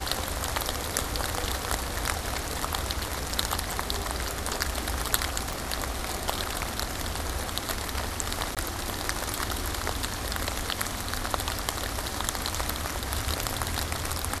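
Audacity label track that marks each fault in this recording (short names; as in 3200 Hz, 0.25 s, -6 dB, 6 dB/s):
5.530000	5.530000	pop
8.550000	8.570000	gap 17 ms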